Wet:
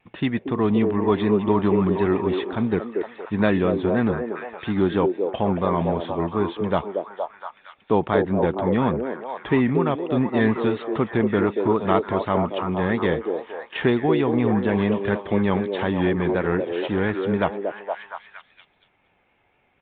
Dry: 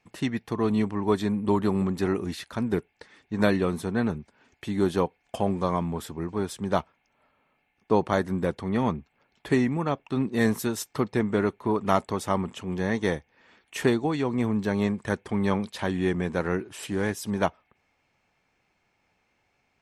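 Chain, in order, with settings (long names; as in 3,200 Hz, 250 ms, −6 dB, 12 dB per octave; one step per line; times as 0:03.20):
pitch vibrato 4.1 Hz 53 cents
downsampling to 8,000 Hz
in parallel at −2 dB: brickwall limiter −18.5 dBFS, peak gain reduction 12 dB
on the sum: echo through a band-pass that steps 233 ms, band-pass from 440 Hz, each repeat 0.7 octaves, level −0.5 dB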